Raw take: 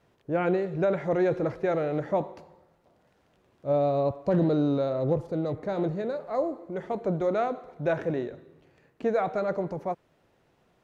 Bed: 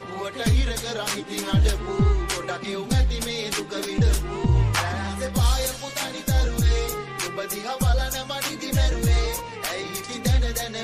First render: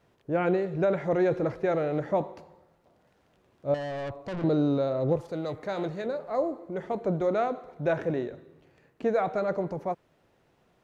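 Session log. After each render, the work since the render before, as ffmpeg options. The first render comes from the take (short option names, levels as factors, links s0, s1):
-filter_complex "[0:a]asettb=1/sr,asplit=3[s0][s1][s2];[s0]atrim=end=3.744[s3];[s1]atrim=start=3.74:end=4.44,asetpts=PTS-STARTPTS,afade=t=in:d=0.004:c=qsin,afade=t=out:st=0.696:d=0.004:c=qsin,aeval=exprs='(tanh(39.8*val(0)+0.2)-tanh(0.2))/39.8':c=same[s4];[s2]atrim=start=4.436[s5];[s3][s4]acrossfade=d=0.004:c1=hsin:c2=qsin[s6];[s6][s5]acrossfade=d=0.004:c1=qsin:c2=hsin,asettb=1/sr,asplit=3[s7][s8][s9];[s7]atrim=end=5.164[s10];[s8]atrim=start=5.16:end=6.06,asetpts=PTS-STARTPTS,afade=t=in:d=0.004:c=qsin,afade=t=out:st=0.896:d=0.004:c=qsin,tiltshelf=f=820:g=-6[s11];[s9]atrim=start=6.056[s12];[s10][s11]acrossfade=d=0.004:c1=hsin:c2=qsin[s13];[s13][s12]acrossfade=d=0.004:c1=qsin:c2=hsin"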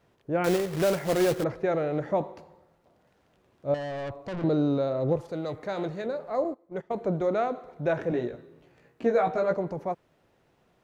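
-filter_complex "[0:a]asettb=1/sr,asplit=3[s0][s1][s2];[s0]atrim=end=0.444[s3];[s1]atrim=start=0.44:end=1.44,asetpts=PTS-STARTPTS,afade=t=in:d=0.004:c=qsin,afade=t=out:st=0.996:d=0.004:c=qsin,acrusher=bits=2:mode=log:mix=0:aa=0.000001[s4];[s2]atrim=start=1.436[s5];[s3][s4]acrossfade=d=0.004:c1=hsin:c2=qsin[s6];[s6][s5]acrossfade=d=0.004:c1=qsin:c2=hsin,asettb=1/sr,asplit=3[s7][s8][s9];[s7]atrim=end=6.444[s10];[s8]atrim=start=6.44:end=6.91,asetpts=PTS-STARTPTS,afade=t=in:d=0.004:c=qsin,afade=t=out:st=0.466:d=0.004:c=qsin,agate=range=0.126:threshold=0.0178:ratio=16:release=100:detection=peak[s11];[s9]atrim=start=6.906[s12];[s10][s11]acrossfade=d=0.004:c1=hsin:c2=qsin[s13];[s13][s12]acrossfade=d=0.004:c1=qsin:c2=hsin,asettb=1/sr,asplit=3[s14][s15][s16];[s14]atrim=end=8.104[s17];[s15]atrim=start=8.1:end=9.54,asetpts=PTS-STARTPTS,afade=t=in:d=0.004:c=qsin,afade=t=out:st=1.436:d=0.004:c=qsin,asplit=2[s18][s19];[s19]adelay=17,volume=0.708[s20];[s18][s20]amix=inputs=2:normalize=0,atrim=end_sample=63504[s21];[s16]atrim=start=9.536[s22];[s17][s21]acrossfade=d=0.004:c1=hsin:c2=qsin[s23];[s23][s22]acrossfade=d=0.004:c1=qsin:c2=hsin"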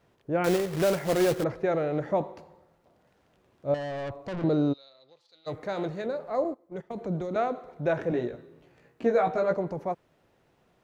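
-filter_complex "[0:a]asplit=3[s0][s1][s2];[s0]afade=t=out:st=4.72:d=0.02[s3];[s1]bandpass=f=4100:t=q:w=4.9,afade=t=in:st=4.72:d=0.02,afade=t=out:st=5.46:d=0.02[s4];[s2]afade=t=in:st=5.46:d=0.02[s5];[s3][s4][s5]amix=inputs=3:normalize=0,asettb=1/sr,asplit=3[s6][s7][s8];[s6]atrim=end=6.604[s9];[s7]atrim=start=6.6:end=7.36,asetpts=PTS-STARTPTS,afade=t=in:d=0.004:c=qsin,afade=t=out:st=0.756:d=0.004:c=qsin,acrossover=split=290|3000[s10][s11][s12];[s11]acompressor=threshold=0.0178:ratio=6:attack=3.2:release=140:knee=2.83:detection=peak[s13];[s10][s13][s12]amix=inputs=3:normalize=0[s14];[s8]atrim=start=7.356[s15];[s9][s14]acrossfade=d=0.004:c1=hsin:c2=qsin[s16];[s16][s15]acrossfade=d=0.004:c1=qsin:c2=hsin"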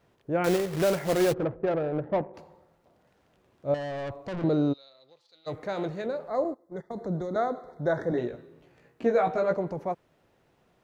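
-filter_complex "[0:a]asplit=3[s0][s1][s2];[s0]afade=t=out:st=1.32:d=0.02[s3];[s1]adynamicsmooth=sensitivity=1:basefreq=540,afade=t=in:st=1.32:d=0.02,afade=t=out:st=2.33:d=0.02[s4];[s2]afade=t=in:st=2.33:d=0.02[s5];[s3][s4][s5]amix=inputs=3:normalize=0,asettb=1/sr,asplit=3[s6][s7][s8];[s6]atrim=end=6.284[s9];[s7]atrim=start=6.28:end=8.18,asetpts=PTS-STARTPTS,afade=t=in:d=0.004:c=qsin,afade=t=out:st=1.896:d=0.004:c=qsin,asuperstop=centerf=2700:order=12:qfactor=2.1[s10];[s8]atrim=start=8.176[s11];[s9][s10]acrossfade=d=0.004:c1=hsin:c2=qsin[s12];[s12][s11]acrossfade=d=0.004:c1=qsin:c2=hsin"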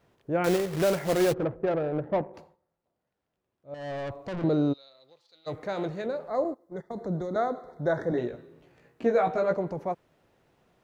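-filter_complex "[0:a]asplit=3[s0][s1][s2];[s0]atrim=end=2.57,asetpts=PTS-STARTPTS,afade=t=out:st=2.37:d=0.2:silence=0.133352[s3];[s1]atrim=start=2.57:end=3.71,asetpts=PTS-STARTPTS,volume=0.133[s4];[s2]atrim=start=3.71,asetpts=PTS-STARTPTS,afade=t=in:d=0.2:silence=0.133352[s5];[s3][s4][s5]concat=n=3:v=0:a=1"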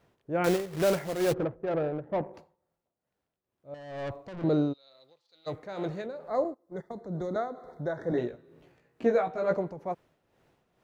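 -af "tremolo=f=2.2:d=0.62"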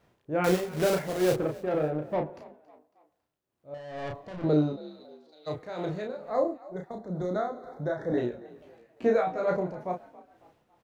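-filter_complex "[0:a]asplit=2[s0][s1];[s1]adelay=33,volume=0.631[s2];[s0][s2]amix=inputs=2:normalize=0,asplit=4[s3][s4][s5][s6];[s4]adelay=276,afreqshift=50,volume=0.1[s7];[s5]adelay=552,afreqshift=100,volume=0.0422[s8];[s6]adelay=828,afreqshift=150,volume=0.0176[s9];[s3][s7][s8][s9]amix=inputs=4:normalize=0"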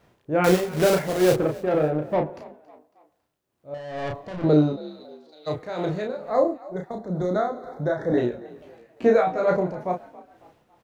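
-af "volume=2"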